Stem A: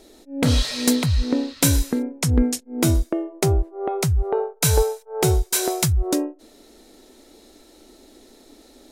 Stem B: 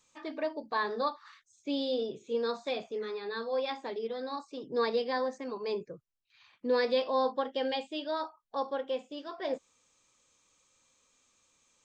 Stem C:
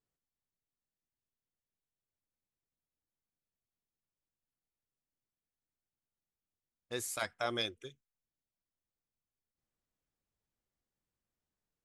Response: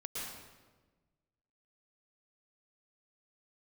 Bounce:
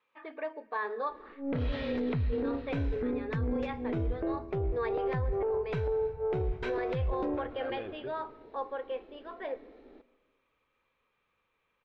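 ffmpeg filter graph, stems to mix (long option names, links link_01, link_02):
-filter_complex "[0:a]aeval=exprs='if(lt(val(0),0),0.708*val(0),val(0))':channel_layout=same,adelay=1100,volume=-5.5dB,asplit=2[link_01][link_02];[link_02]volume=-17.5dB[link_03];[1:a]highpass=frequency=960:poles=1,volume=0.5dB,asplit=3[link_04][link_05][link_06];[link_05]volume=-20.5dB[link_07];[2:a]lowpass=1800,alimiter=level_in=2.5dB:limit=-24dB:level=0:latency=1,volume=-2.5dB,aeval=exprs='0.0473*(cos(1*acos(clip(val(0)/0.0473,-1,1)))-cos(1*PI/2))+0.0211*(cos(5*acos(clip(val(0)/0.0473,-1,1)))-cos(5*PI/2))':channel_layout=same,adelay=200,volume=-6dB,asplit=2[link_08][link_09];[link_09]volume=-12dB[link_10];[link_06]apad=whole_len=531226[link_11];[link_08][link_11]sidechaincompress=threshold=-37dB:ratio=8:attack=8.4:release=366[link_12];[3:a]atrim=start_sample=2205[link_13];[link_03][link_07][link_10]amix=inputs=3:normalize=0[link_14];[link_14][link_13]afir=irnorm=-1:irlink=0[link_15];[link_01][link_04][link_12][link_15]amix=inputs=4:normalize=0,lowpass=frequency=2500:width=0.5412,lowpass=frequency=2500:width=1.3066,equalizer=frequency=440:width=4:gain=7,alimiter=level_in=0.5dB:limit=-24dB:level=0:latency=1:release=13,volume=-0.5dB"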